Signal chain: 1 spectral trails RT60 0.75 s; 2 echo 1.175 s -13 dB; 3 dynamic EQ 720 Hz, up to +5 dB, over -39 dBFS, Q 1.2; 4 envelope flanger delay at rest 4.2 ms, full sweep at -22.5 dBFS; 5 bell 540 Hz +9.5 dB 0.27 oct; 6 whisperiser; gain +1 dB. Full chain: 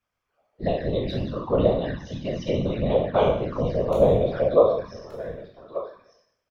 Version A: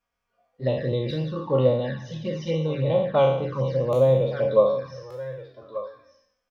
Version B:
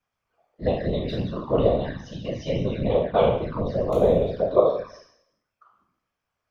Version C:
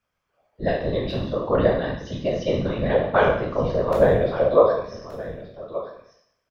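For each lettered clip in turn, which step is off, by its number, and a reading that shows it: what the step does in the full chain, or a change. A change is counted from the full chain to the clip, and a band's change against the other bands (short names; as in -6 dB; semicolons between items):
6, 125 Hz band +3.0 dB; 2, momentary loudness spread change -4 LU; 4, 2 kHz band +9.0 dB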